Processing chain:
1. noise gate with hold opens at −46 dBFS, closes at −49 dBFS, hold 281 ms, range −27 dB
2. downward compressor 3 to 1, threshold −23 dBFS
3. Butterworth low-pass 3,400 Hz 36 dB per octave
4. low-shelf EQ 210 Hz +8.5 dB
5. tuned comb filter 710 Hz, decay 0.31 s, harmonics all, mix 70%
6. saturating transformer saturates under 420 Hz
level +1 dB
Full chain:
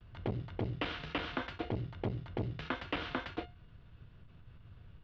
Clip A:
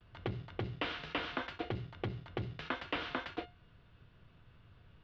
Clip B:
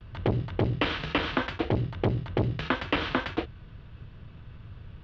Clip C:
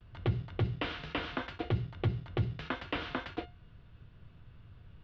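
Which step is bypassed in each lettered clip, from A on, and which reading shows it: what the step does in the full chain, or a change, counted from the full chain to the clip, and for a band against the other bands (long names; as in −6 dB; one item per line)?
4, 125 Hz band −3.5 dB
5, change in integrated loudness +10.0 LU
6, change in crest factor −2.5 dB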